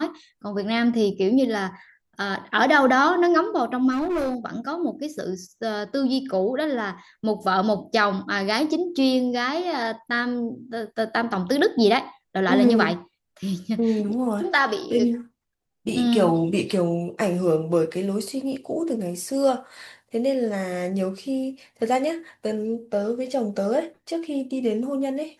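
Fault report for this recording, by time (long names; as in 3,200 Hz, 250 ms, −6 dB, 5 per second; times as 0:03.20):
0:03.91–0:04.35: clipping −21.5 dBFS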